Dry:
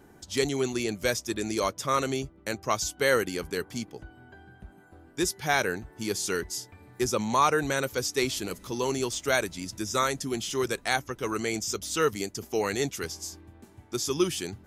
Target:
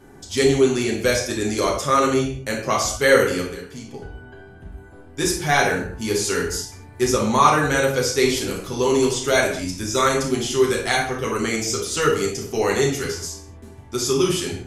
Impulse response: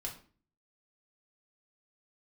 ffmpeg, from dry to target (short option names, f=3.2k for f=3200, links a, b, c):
-filter_complex "[0:a]asplit=3[a][b][c];[a]afade=t=out:st=3.41:d=0.02[d];[b]acompressor=threshold=-39dB:ratio=12,afade=t=in:st=3.41:d=0.02,afade=t=out:st=3.83:d=0.02[e];[c]afade=t=in:st=3.83:d=0.02[f];[d][e][f]amix=inputs=3:normalize=0[g];[1:a]atrim=start_sample=2205,atrim=end_sample=6174,asetrate=24696,aresample=44100[h];[g][h]afir=irnorm=-1:irlink=0,volume=4.5dB"